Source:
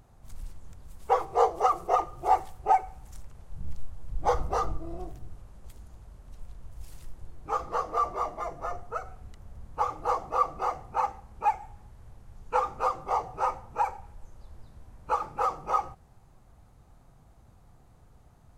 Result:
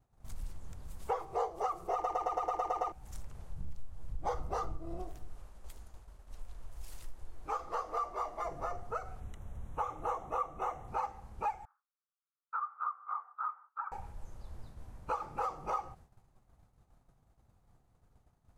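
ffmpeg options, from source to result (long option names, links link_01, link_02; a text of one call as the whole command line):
ffmpeg -i in.wav -filter_complex "[0:a]asettb=1/sr,asplit=3[link_01][link_02][link_03];[link_01]atrim=end=5.024[link_04];[link_02]atrim=start=5.02:end=8.45,asetpts=PTS-STARTPTS,afade=type=in:duration=0.004:curve=qsin,afade=type=out:start_time=3.426:duration=0.004:curve=qsin,equalizer=frequency=130:width_type=o:width=2.4:gain=-10[link_05];[link_03]atrim=start=8.446[link_06];[link_04][link_05]acrossfade=duration=0.004:curve1=hsin:curve2=qsin[link_07];[link_07][link_06]acrossfade=duration=0.004:curve1=qsin:curve2=hsin,asettb=1/sr,asplit=3[link_08][link_09][link_10];[link_08]atrim=end=9.204[link_11];[link_09]atrim=start=9.2:end=10.88,asetpts=PTS-STARTPTS,afade=type=in:duration=0.004:curve=qsin,afade=type=out:start_time=1.676:duration=0.004:curve=qsin,asuperstop=centerf=4700:order=4:qfactor=2.6[link_12];[link_10]atrim=start=10.876[link_13];[link_11][link_12]acrossfade=duration=0.004:curve1=hsin:curve2=qsin[link_14];[link_14][link_13]acrossfade=duration=0.004:curve1=qsin:curve2=hsin,asettb=1/sr,asplit=3[link_15][link_16][link_17];[link_15]atrim=end=11.654[link_18];[link_16]atrim=start=11.65:end=13.92,asetpts=PTS-STARTPTS,afade=type=in:duration=0.004:curve=qsin,afade=type=out:start_time=2.266:duration=0.004:curve=qsin,asuperpass=centerf=1300:order=4:qfactor=3.6[link_19];[link_17]atrim=start=13.916[link_20];[link_18][link_19]acrossfade=duration=0.004:curve1=hsin:curve2=qsin[link_21];[link_21][link_20]acrossfade=duration=0.004:curve1=qsin:curve2=hsin,asplit=10[link_22][link_23][link_24][link_25][link_26][link_27][link_28][link_29][link_30][link_31];[link_22]atrim=end=2.042[link_32];[link_23]atrim=start=1.928:end=2.042[link_33];[link_24]atrim=start=1.928:end=2.042[link_34];[link_25]atrim=start=1.928:end=2.042[link_35];[link_26]atrim=start=1.928:end=2.042[link_36];[link_27]atrim=start=1.928:end=2.042[link_37];[link_28]atrim=start=1.928:end=2.042[link_38];[link_29]atrim=start=1.928:end=2.042[link_39];[link_30]atrim=start=1.928:end=2.042[link_40];[link_31]atrim=start=2.918[link_41];[link_32][link_33]acrossfade=duration=0.004:curve1=hsin:curve2=hsin[link_42];[link_42][link_34]acrossfade=duration=0.004:curve1=hsin:curve2=hsin[link_43];[link_43][link_35]acrossfade=duration=0.004:curve1=hsin:curve2=hsin[link_44];[link_44][link_36]acrossfade=duration=0.004:curve1=hsin:curve2=hsin[link_45];[link_45][link_37]acrossfade=duration=0.004:curve1=hsin:curve2=hsin[link_46];[link_46][link_38]acrossfade=duration=0.004:curve1=hsin:curve2=hsin[link_47];[link_47][link_39]acrossfade=duration=0.004:curve1=hsin:curve2=hsin[link_48];[link_48][link_40]acrossfade=duration=0.004:curve1=hsin:curve2=hsin[link_49];[link_49][link_41]acrossfade=duration=0.004:curve1=hsin:curve2=hsin,agate=range=-33dB:threshold=-46dB:ratio=3:detection=peak,acompressor=threshold=-36dB:ratio=3,volume=1dB" out.wav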